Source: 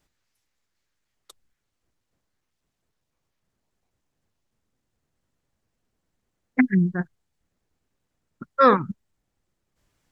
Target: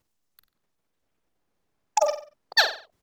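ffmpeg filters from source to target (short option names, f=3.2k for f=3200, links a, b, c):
-filter_complex "[0:a]asplit=2[a][b];[b]adelay=155,lowpass=f=2.7k:p=1,volume=-8dB,asplit=2[c][d];[d]adelay=155,lowpass=f=2.7k:p=1,volume=0.47,asplit=2[e][f];[f]adelay=155,lowpass=f=2.7k:p=1,volume=0.47,asplit=2[g][h];[h]adelay=155,lowpass=f=2.7k:p=1,volume=0.47,asplit=2[i][j];[j]adelay=155,lowpass=f=2.7k:p=1,volume=0.47[k];[a][c][e][g][i][k]amix=inputs=6:normalize=0,acrusher=bits=7:mode=log:mix=0:aa=0.000001,asetrate=147294,aresample=44100,volume=-1.5dB"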